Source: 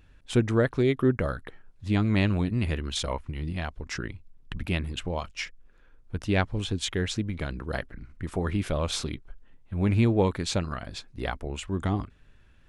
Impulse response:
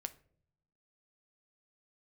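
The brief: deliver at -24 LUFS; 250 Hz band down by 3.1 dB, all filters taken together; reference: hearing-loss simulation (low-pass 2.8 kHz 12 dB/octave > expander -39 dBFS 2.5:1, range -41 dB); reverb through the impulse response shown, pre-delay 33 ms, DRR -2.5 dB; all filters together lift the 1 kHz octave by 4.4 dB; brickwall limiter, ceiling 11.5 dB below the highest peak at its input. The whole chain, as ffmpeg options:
-filter_complex "[0:a]equalizer=f=250:t=o:g=-4.5,equalizer=f=1000:t=o:g=6,alimiter=limit=0.112:level=0:latency=1,asplit=2[s0][s1];[1:a]atrim=start_sample=2205,adelay=33[s2];[s1][s2]afir=irnorm=-1:irlink=0,volume=1.78[s3];[s0][s3]amix=inputs=2:normalize=0,lowpass=2800,agate=range=0.00891:threshold=0.0112:ratio=2.5,volume=1.58"

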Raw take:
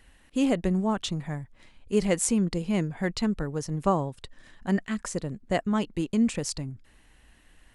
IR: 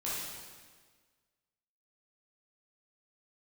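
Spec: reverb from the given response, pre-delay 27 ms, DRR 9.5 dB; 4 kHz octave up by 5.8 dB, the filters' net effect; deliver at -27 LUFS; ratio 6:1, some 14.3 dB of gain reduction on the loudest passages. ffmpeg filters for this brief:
-filter_complex "[0:a]equalizer=f=4000:t=o:g=7.5,acompressor=threshold=0.0178:ratio=6,asplit=2[s0][s1];[1:a]atrim=start_sample=2205,adelay=27[s2];[s1][s2]afir=irnorm=-1:irlink=0,volume=0.2[s3];[s0][s3]amix=inputs=2:normalize=0,volume=3.98"

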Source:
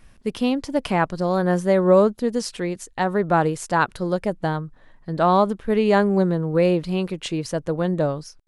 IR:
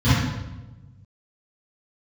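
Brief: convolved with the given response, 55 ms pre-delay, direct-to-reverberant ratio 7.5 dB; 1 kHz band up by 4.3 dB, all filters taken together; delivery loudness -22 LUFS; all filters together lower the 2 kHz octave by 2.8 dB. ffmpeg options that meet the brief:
-filter_complex "[0:a]equalizer=f=1000:t=o:g=7,equalizer=f=2000:t=o:g=-7.5,asplit=2[s0][s1];[1:a]atrim=start_sample=2205,adelay=55[s2];[s1][s2]afir=irnorm=-1:irlink=0,volume=0.0447[s3];[s0][s3]amix=inputs=2:normalize=0,volume=0.596"

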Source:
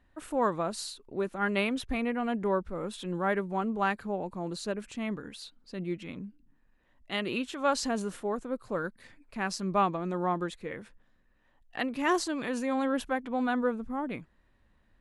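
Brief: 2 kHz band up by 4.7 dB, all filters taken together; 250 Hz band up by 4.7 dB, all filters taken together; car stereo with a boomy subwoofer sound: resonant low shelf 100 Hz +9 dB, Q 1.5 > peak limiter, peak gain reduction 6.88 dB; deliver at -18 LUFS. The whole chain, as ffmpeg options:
-af "lowshelf=f=100:t=q:w=1.5:g=9,equalizer=f=250:t=o:g=7,equalizer=f=2000:t=o:g=6,volume=4.22,alimiter=limit=0.473:level=0:latency=1"

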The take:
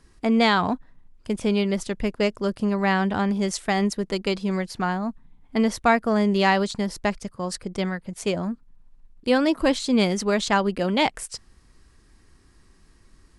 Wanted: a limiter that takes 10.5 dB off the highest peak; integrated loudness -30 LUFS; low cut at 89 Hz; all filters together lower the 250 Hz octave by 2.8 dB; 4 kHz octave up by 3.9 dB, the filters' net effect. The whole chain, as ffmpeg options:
-af "highpass=89,equalizer=f=250:t=o:g=-3.5,equalizer=f=4000:t=o:g=5,volume=0.708,alimiter=limit=0.119:level=0:latency=1"

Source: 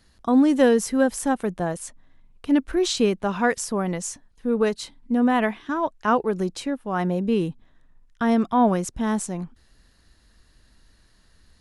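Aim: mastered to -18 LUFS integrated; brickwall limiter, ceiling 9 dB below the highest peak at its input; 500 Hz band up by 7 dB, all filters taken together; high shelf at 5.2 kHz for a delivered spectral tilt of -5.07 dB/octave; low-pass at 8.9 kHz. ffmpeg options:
-af "lowpass=8900,equalizer=f=500:t=o:g=8,highshelf=f=5200:g=5,volume=1.41,alimiter=limit=0.473:level=0:latency=1"

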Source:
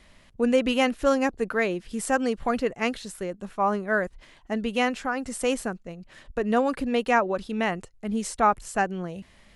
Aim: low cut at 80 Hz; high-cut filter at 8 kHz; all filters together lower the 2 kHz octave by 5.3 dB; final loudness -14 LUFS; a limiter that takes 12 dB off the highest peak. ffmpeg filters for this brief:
-af "highpass=80,lowpass=8000,equalizer=f=2000:t=o:g=-7,volume=8.41,alimiter=limit=0.668:level=0:latency=1"

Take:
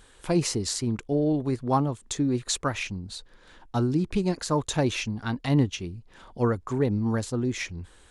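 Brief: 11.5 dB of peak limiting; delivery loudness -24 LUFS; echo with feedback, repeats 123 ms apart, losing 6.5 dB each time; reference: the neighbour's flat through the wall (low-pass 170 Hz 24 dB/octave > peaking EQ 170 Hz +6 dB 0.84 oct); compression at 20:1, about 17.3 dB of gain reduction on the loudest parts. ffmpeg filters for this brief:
-af "acompressor=threshold=0.0178:ratio=20,alimiter=level_in=2.99:limit=0.0631:level=0:latency=1,volume=0.335,lowpass=f=170:w=0.5412,lowpass=f=170:w=1.3066,equalizer=f=170:t=o:w=0.84:g=6,aecho=1:1:123|246|369|492|615|738:0.473|0.222|0.105|0.0491|0.0231|0.0109,volume=10.6"

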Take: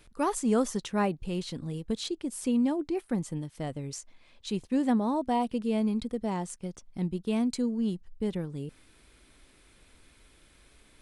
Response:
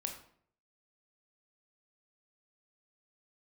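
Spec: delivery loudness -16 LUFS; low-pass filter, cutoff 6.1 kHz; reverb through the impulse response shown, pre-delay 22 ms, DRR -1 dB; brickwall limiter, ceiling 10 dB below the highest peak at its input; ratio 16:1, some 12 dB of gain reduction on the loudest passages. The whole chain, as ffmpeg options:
-filter_complex "[0:a]lowpass=6100,acompressor=threshold=0.02:ratio=16,alimiter=level_in=3.35:limit=0.0631:level=0:latency=1,volume=0.299,asplit=2[s0][s1];[1:a]atrim=start_sample=2205,adelay=22[s2];[s1][s2]afir=irnorm=-1:irlink=0,volume=1.19[s3];[s0][s3]amix=inputs=2:normalize=0,volume=14.1"

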